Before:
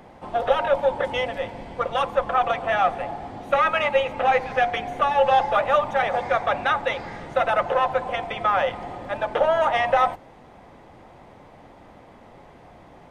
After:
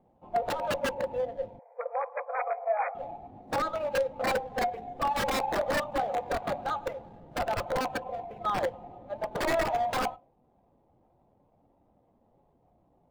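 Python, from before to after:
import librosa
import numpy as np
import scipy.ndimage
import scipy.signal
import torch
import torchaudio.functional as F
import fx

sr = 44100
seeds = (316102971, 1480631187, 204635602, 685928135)

p1 = scipy.ndimage.median_filter(x, 25, mode='constant')
p2 = p1 + fx.echo_single(p1, sr, ms=108, db=-18.0, dry=0)
p3 = (np.mod(10.0 ** (16.5 / 20.0) * p2 + 1.0, 2.0) - 1.0) / 10.0 ** (16.5 / 20.0)
p4 = fx.brickwall_bandpass(p3, sr, low_hz=430.0, high_hz=2500.0, at=(1.59, 2.95))
p5 = fx.spectral_expand(p4, sr, expansion=1.5)
y = F.gain(torch.from_numpy(p5), -4.5).numpy()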